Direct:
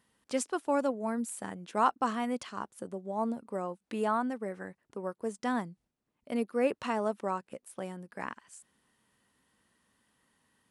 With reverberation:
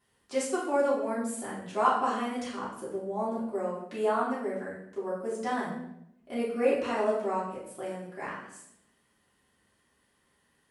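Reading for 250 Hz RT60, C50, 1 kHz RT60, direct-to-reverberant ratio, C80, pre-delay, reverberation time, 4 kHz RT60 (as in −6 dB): 0.95 s, 2.5 dB, 0.70 s, −9.5 dB, 6.5 dB, 3 ms, 0.75 s, 0.65 s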